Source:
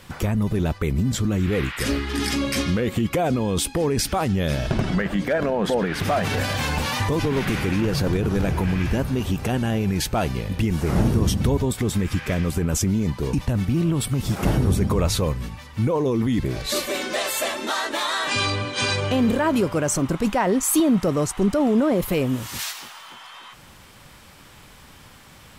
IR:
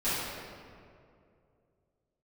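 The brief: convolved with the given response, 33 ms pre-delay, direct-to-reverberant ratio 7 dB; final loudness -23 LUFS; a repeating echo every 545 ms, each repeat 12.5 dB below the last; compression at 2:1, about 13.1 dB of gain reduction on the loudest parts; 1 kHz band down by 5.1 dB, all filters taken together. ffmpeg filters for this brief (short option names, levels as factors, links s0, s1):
-filter_complex "[0:a]equalizer=f=1000:t=o:g=-7,acompressor=threshold=0.01:ratio=2,aecho=1:1:545|1090|1635:0.237|0.0569|0.0137,asplit=2[s0][s1];[1:a]atrim=start_sample=2205,adelay=33[s2];[s1][s2]afir=irnorm=-1:irlink=0,volume=0.133[s3];[s0][s3]amix=inputs=2:normalize=0,volume=3.16"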